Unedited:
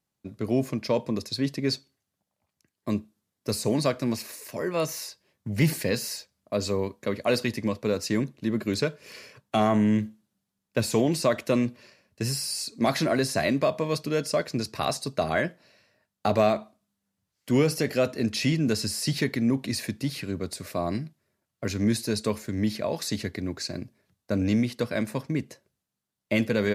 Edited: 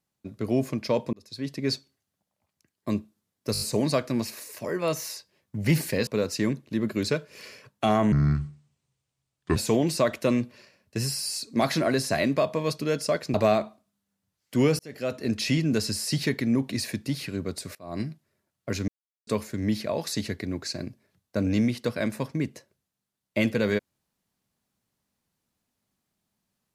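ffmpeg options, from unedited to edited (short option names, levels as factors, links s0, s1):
-filter_complex "[0:a]asplit=14[s0][s1][s2][s3][s4][s5][s6][s7][s8][s9][s10][s11][s12][s13];[s0]atrim=end=1.13,asetpts=PTS-STARTPTS,afade=t=out:st=1.126:d=0.004:c=hsin[s14];[s1]atrim=start=1.13:end=3.552,asetpts=PTS-STARTPTS,afade=t=in:d=0.59[s15];[s2]atrim=start=3.528:end=3.552[s16];[s3]atrim=start=3.528:end=3.552[s17];[s4]atrim=start=3.528:end=3.552[s18];[s5]atrim=start=3.528:end=5.992[s19];[s6]atrim=start=7.778:end=9.834[s20];[s7]atrim=start=9.83:end=10.81,asetpts=PTS-STARTPTS,asetrate=29988,aresample=44100[s21];[s8]atrim=start=10.806:end=14.592[s22];[s9]atrim=start=16.288:end=17.74,asetpts=PTS-STARTPTS,afade=t=out:st=1.448:d=0.004:c=hsin[s23];[s10]atrim=start=17.74:end=20.7,asetpts=PTS-STARTPTS,afade=t=in:d=0.54,afade=t=out:st=2.956:d=0.004:c=hsin:silence=0.0668344[s24];[s11]atrim=start=20.7:end=21.83,asetpts=PTS-STARTPTS,afade=t=in:d=0.26:c=qua:silence=0.0668344,afade=t=out:st=1.126:d=0.004:c=hsin[s25];[s12]atrim=start=21.83:end=22.22,asetpts=PTS-STARTPTS,volume=0[s26];[s13]atrim=start=22.22,asetpts=PTS-STARTPTS,afade=t=in:d=0.004:c=hsin[s27];[s14][s15]concat=n=2:v=0:a=1[s28];[s28][s16]acrossfade=d=0.004:c1=hsin:c2=hsin[s29];[s29][s17]acrossfade=d=0.004:c1=hsin:c2=hsin[s30];[s30][s18]acrossfade=d=0.004:c1=hsin:c2=hsin[s31];[s31][s19]acrossfade=d=0.004:c1=hsin:c2=hsin[s32];[s32][s20]acrossfade=d=0.004:c1=hsin:c2=hsin[s33];[s33][s21]acrossfade=d=0.004:c1=hsin:c2=hsin[s34];[s34][s22]acrossfade=d=0.004:c1=hsin:c2=hsin[s35];[s23][s24][s25][s26][s27]concat=n=5:v=0:a=1[s36];[s35][s36]acrossfade=d=0.004:c1=hsin:c2=hsin"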